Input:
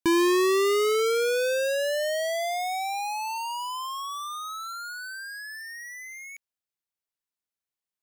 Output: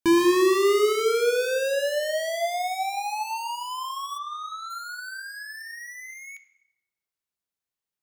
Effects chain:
0:04.17–0:04.69: low-pass filter 2,700 Hz → 5,600 Hz 12 dB per octave
on a send: convolution reverb RT60 1.1 s, pre-delay 3 ms, DRR 7 dB

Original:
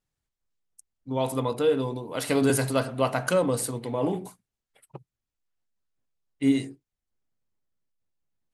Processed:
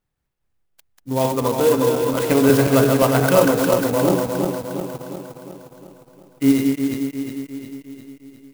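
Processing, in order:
feedback delay that plays each chunk backwards 178 ms, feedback 74%, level −3.5 dB
high-shelf EQ 7,000 Hz −10 dB
converter with an unsteady clock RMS 0.051 ms
level +6.5 dB

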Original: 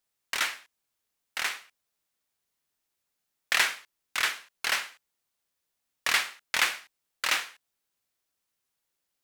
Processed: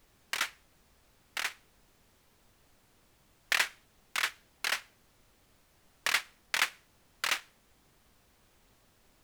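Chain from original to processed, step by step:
transient designer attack +6 dB, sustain −11 dB
background noise pink −58 dBFS
level −7.5 dB

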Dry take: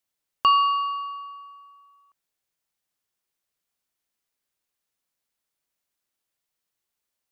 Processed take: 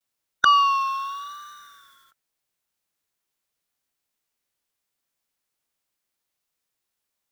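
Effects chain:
pitch vibrato 0.84 Hz 72 cents
formants moved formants +4 semitones
level +2 dB

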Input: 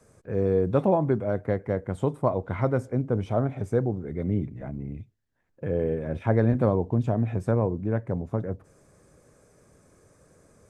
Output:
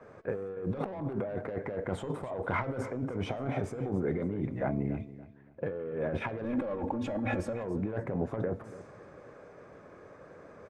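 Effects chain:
mid-hump overdrive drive 20 dB, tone 1,400 Hz, clips at −8.5 dBFS
compressor whose output falls as the input rises −28 dBFS, ratio −1
0:06.44–0:07.53: comb filter 3.6 ms, depth 98%
repeating echo 284 ms, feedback 29%, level −15.5 dB
low-pass that shuts in the quiet parts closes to 2,000 Hz, open at −29.5 dBFS
hum removal 220.5 Hz, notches 37
level −6 dB

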